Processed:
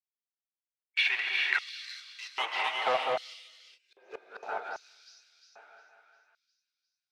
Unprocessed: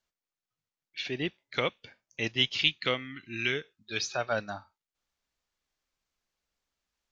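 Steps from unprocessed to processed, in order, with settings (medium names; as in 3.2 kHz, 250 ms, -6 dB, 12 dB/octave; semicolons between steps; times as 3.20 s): 3.82–4.53 s: spectral replace 480–1200 Hz both; waveshaping leveller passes 5; 1.16–1.83 s: compressor with a negative ratio -20 dBFS, ratio -0.5; two-band feedback delay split 1.5 kHz, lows 200 ms, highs 354 ms, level -5 dB; band-pass sweep 2.3 kHz -> 470 Hz, 1.05–3.61 s; 3.33–4.43 s: inverted gate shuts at -20 dBFS, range -37 dB; gated-style reverb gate 460 ms rising, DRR 2.5 dB; LFO high-pass square 0.63 Hz 800–4700 Hz; loudspeaker Doppler distortion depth 0.1 ms; trim -4 dB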